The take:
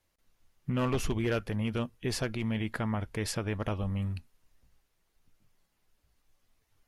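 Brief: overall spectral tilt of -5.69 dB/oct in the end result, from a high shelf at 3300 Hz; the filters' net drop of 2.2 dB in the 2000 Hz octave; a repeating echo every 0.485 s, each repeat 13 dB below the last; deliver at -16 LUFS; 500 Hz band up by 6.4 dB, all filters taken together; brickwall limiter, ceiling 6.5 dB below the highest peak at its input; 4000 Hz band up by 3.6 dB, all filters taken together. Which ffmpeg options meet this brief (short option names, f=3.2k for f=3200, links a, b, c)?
-af "equalizer=f=500:t=o:g=8,equalizer=f=2k:t=o:g=-5.5,highshelf=f=3.3k:g=3.5,equalizer=f=4k:t=o:g=3.5,alimiter=limit=-22.5dB:level=0:latency=1,aecho=1:1:485|970|1455:0.224|0.0493|0.0108,volume=16.5dB"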